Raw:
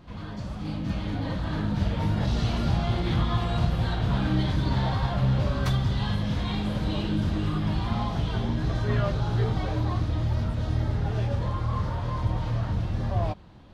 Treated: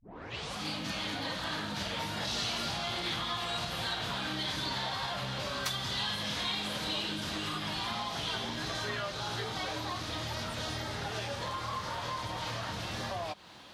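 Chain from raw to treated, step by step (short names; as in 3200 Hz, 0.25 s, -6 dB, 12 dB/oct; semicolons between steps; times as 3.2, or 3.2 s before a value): tape start at the beginning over 0.57 s; HPF 890 Hz 6 dB/oct; compressor, threshold -41 dBFS, peak gain reduction 11.5 dB; high shelf 2700 Hz +10.5 dB; gain +6 dB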